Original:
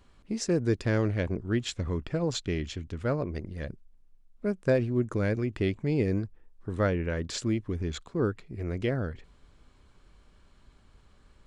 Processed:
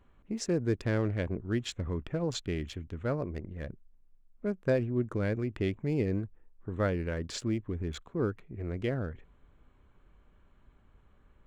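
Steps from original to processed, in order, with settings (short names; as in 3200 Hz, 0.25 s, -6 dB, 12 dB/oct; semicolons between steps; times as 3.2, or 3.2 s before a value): Wiener smoothing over 9 samples; gain -3 dB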